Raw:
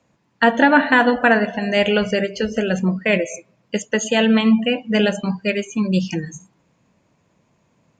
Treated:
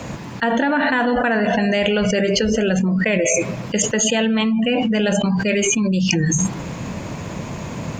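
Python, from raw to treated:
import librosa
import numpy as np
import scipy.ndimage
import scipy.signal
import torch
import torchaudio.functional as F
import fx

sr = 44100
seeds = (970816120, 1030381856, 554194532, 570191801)

y = fx.low_shelf(x, sr, hz=110.0, db=6.5)
y = fx.env_flatten(y, sr, amount_pct=100)
y = y * 10.0 ** (-8.0 / 20.0)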